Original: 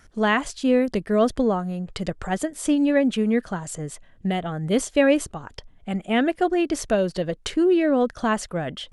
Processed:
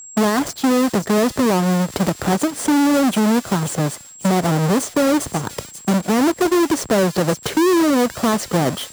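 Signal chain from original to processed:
each half-wave held at its own peak
high-pass filter 110 Hz 12 dB per octave
brickwall limiter −15.5 dBFS, peak gain reduction 11.5 dB
parametric band 2,700 Hz −6.5 dB 1.6 octaves
on a send: delay with a high-pass on its return 531 ms, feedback 52%, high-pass 3,300 Hz, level −9 dB
on the sum: downward expander −36 dBFS
steady tone 7,600 Hz −47 dBFS
high-shelf EQ 9,000 Hz −6 dB
multiband upward and downward compressor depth 40%
level +7.5 dB

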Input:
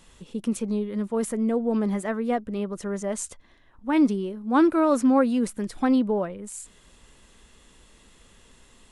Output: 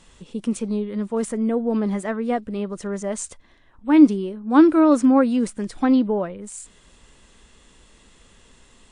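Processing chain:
dynamic equaliser 300 Hz, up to +8 dB, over −38 dBFS, Q 6.5
level +2 dB
WMA 128 kbit/s 22,050 Hz

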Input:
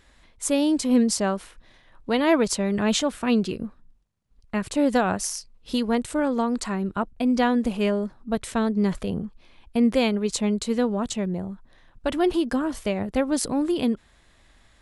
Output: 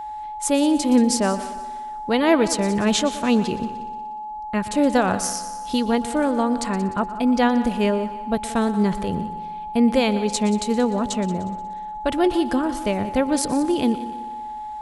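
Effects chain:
echo machine with several playback heads 60 ms, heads second and third, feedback 48%, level −16 dB
steady tone 850 Hz −32 dBFS
level +2.5 dB

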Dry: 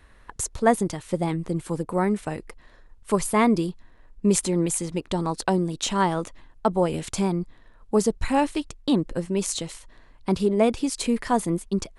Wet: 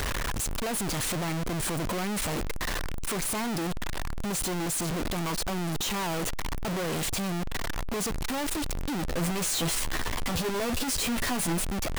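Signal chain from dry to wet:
sign of each sample alone
0:09.09–0:11.65: double-tracking delay 12 ms −5 dB
level −4.5 dB

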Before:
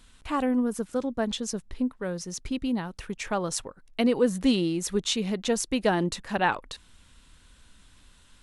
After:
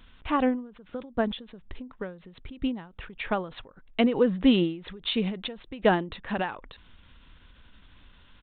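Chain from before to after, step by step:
downsampling to 8,000 Hz
every ending faded ahead of time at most 120 dB per second
level +3 dB

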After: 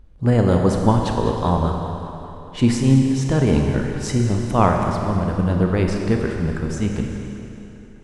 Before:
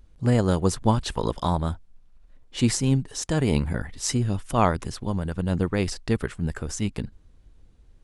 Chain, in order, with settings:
high-shelf EQ 3,200 Hz −11.5 dB
tape delay 199 ms, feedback 72%, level −12 dB, low-pass 4,700 Hz
four-comb reverb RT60 2.6 s, combs from 30 ms, DRR 2.5 dB
level +4.5 dB

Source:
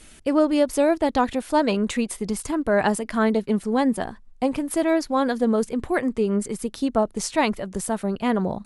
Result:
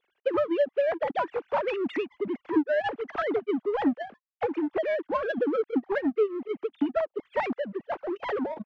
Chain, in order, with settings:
three sine waves on the formant tracks
downward compressor 3 to 1, threshold −24 dBFS, peak gain reduction 10.5 dB
power curve on the samples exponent 1.4
high-frequency loss of the air 120 metres
level +2.5 dB

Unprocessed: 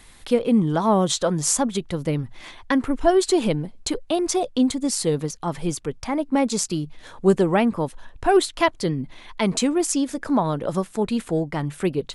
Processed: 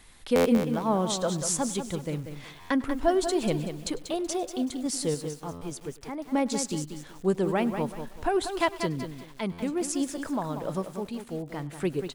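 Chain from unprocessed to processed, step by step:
sample-and-hold tremolo 3.5 Hz
on a send: single-tap delay 100 ms −21 dB
on the sum: buffer that repeats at 0:00.35/0:02.60/0:05.51/0:09.52, samples 512, times 8
feedback echo at a low word length 189 ms, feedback 35%, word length 7 bits, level −8 dB
level −5 dB

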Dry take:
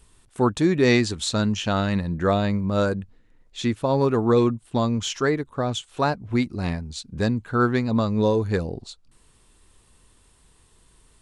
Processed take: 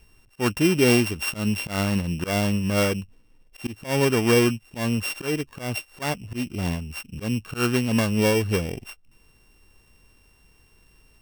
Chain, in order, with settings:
samples sorted by size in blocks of 16 samples
volume swells 137 ms

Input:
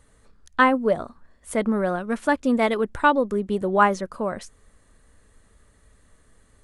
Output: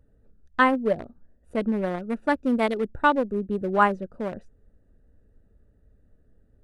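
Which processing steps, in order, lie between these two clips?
adaptive Wiener filter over 41 samples
level −1.5 dB

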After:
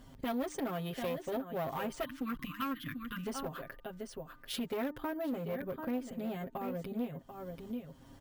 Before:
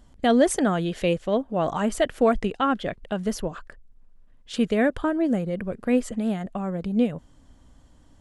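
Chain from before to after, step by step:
comb filter 7.5 ms, depth 96%
single-tap delay 738 ms −13 dB
time-frequency box erased 0:02.05–0:03.27, 340–970 Hz
bad sample-rate conversion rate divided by 3×, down filtered, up hold
asymmetric clip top −22.5 dBFS
high-pass filter 61 Hz 6 dB per octave
hum removal 301.3 Hz, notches 6
downward compressor 2.5 to 1, threshold −42 dBFS, peak gain reduction 19 dB
saturating transformer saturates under 360 Hz
level +1 dB

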